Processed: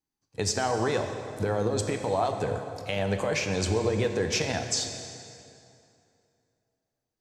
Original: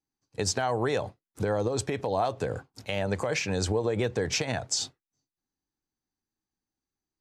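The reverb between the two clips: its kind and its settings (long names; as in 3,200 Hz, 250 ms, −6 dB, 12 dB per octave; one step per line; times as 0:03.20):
dense smooth reverb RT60 2.7 s, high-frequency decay 0.75×, DRR 5 dB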